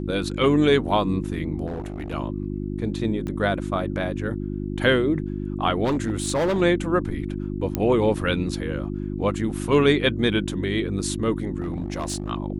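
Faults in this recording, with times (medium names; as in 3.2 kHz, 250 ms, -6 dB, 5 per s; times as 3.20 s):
hum 50 Hz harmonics 7 -29 dBFS
1.66–2.14 s: clipped -26 dBFS
3.27 s: pop -20 dBFS
5.84–6.62 s: clipped -18.5 dBFS
7.75 s: pop -10 dBFS
11.60–12.30 s: clipped -22.5 dBFS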